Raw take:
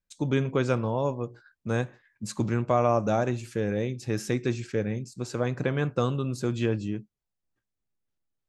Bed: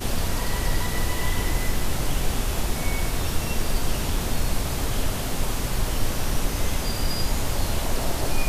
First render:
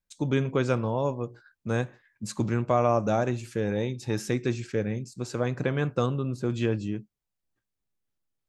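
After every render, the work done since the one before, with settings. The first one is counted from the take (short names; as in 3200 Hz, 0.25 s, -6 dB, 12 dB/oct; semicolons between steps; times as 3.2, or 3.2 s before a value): 3.65–4.21 small resonant body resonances 890/3700 Hz, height 13 dB; 6.06–6.5 high shelf 2600 Hz -10 dB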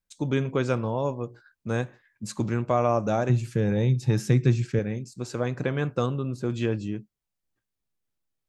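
3.29–4.79 bell 140 Hz +14.5 dB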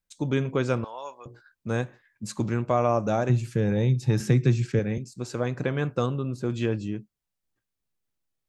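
0.84–1.26 HPF 1100 Hz; 4.2–4.98 three-band squash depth 40%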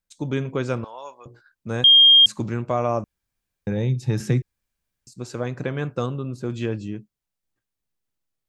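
1.84–2.26 bleep 3220 Hz -8.5 dBFS; 3.04–3.67 room tone; 4.42–5.07 room tone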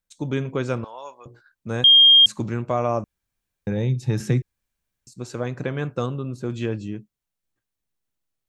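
notch 4900 Hz, Q 22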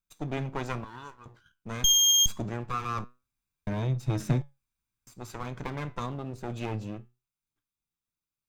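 minimum comb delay 0.82 ms; flange 0.25 Hz, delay 5.8 ms, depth 5.3 ms, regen +82%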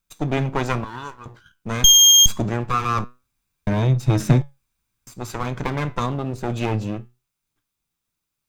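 gain +10.5 dB; limiter -3 dBFS, peak gain reduction 1.5 dB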